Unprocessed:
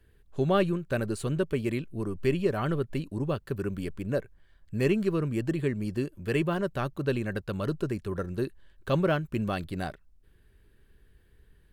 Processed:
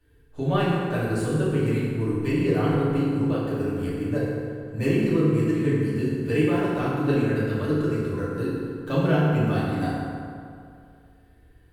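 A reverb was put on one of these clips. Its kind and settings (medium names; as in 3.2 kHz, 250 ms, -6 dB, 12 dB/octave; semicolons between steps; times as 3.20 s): FDN reverb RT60 2.4 s, low-frequency decay 1×, high-frequency decay 0.55×, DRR -9.5 dB; trim -5.5 dB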